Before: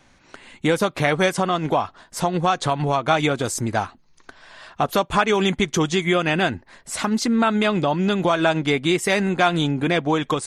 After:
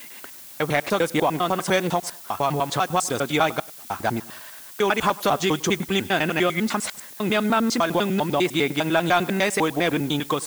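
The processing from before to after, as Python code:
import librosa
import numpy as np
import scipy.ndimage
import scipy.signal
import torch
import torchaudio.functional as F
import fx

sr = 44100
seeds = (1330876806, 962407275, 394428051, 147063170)

p1 = fx.block_reorder(x, sr, ms=100.0, group=6)
p2 = fx.highpass(p1, sr, hz=180.0, slope=6)
p3 = fx.echo_feedback(p2, sr, ms=101, feedback_pct=37, wet_db=-23)
p4 = fx.dmg_noise_colour(p3, sr, seeds[0], colour='blue', level_db=-42.0)
p5 = 10.0 ** (-13.5 / 20.0) * np.tanh(p4 / 10.0 ** (-13.5 / 20.0))
p6 = p4 + F.gain(torch.from_numpy(p5), -4.0).numpy()
y = F.gain(torch.from_numpy(p6), -4.5).numpy()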